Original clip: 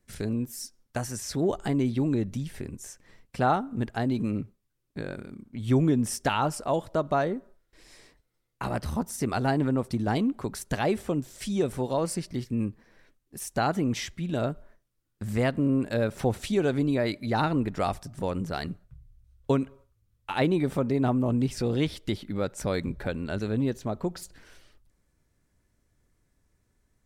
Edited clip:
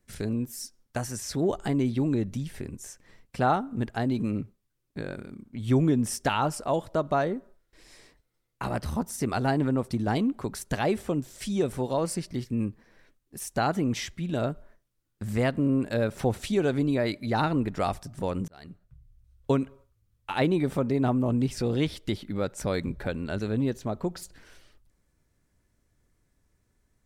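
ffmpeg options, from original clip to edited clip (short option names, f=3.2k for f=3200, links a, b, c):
-filter_complex "[0:a]asplit=2[a][b];[a]atrim=end=18.48,asetpts=PTS-STARTPTS,afade=t=out:st=18.476:d=0.004:c=hsin[c];[b]atrim=start=18.48,asetpts=PTS-STARTPTS,afade=t=in:d=1.07:c=qsin[d];[c][d]concat=n=2:v=0:a=1"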